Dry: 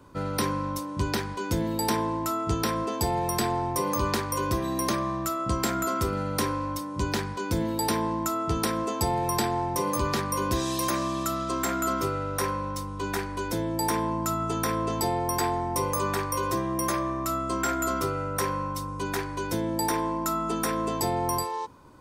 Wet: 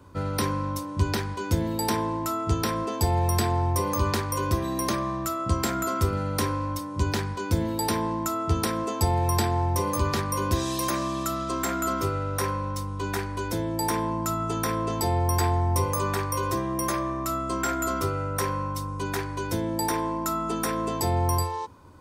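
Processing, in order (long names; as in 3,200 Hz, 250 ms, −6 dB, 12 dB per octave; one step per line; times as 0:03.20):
parametric band 87 Hz +15 dB 0.25 octaves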